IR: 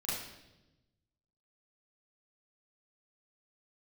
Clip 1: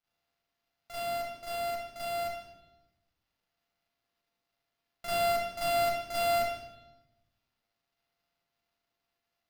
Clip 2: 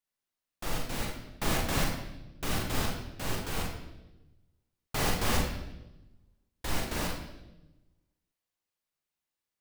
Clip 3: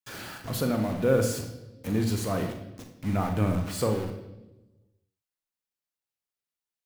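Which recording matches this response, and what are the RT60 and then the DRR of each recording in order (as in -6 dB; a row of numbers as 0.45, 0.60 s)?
1; 1.0, 1.0, 1.0 s; -9.5, -0.5, 4.0 dB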